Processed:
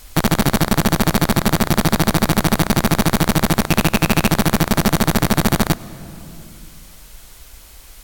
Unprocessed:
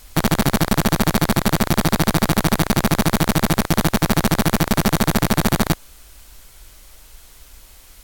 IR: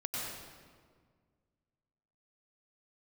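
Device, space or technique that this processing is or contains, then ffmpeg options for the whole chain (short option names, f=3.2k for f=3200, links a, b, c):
ducked reverb: -filter_complex "[0:a]asettb=1/sr,asplit=3[a][b][c];[a]atrim=end=3.694[d];[b]atrim=start=3.69:end=4.3,asetpts=PTS-STARTPTS,afade=t=in:d=0.004:c=qsin,afade=t=out:st=0.606:d=0.004:c=qsin,equalizer=f=2.6k:t=o:w=0.21:g=13[e];[c]atrim=start=4.296[f];[d][e]acrossfade=d=0.004:c1=hsin:c2=qsin[g];[g][f]acrossfade=d=0.004:c1=qsin:c2=hsin,asplit=3[h][i][j];[1:a]atrim=start_sample=2205[k];[i][k]afir=irnorm=-1:irlink=0[l];[j]apad=whole_len=354343[m];[l][m]sidechaincompress=threshold=-22dB:ratio=8:attack=6.4:release=722,volume=-9.5dB[n];[h][n]amix=inputs=2:normalize=0,volume=1dB"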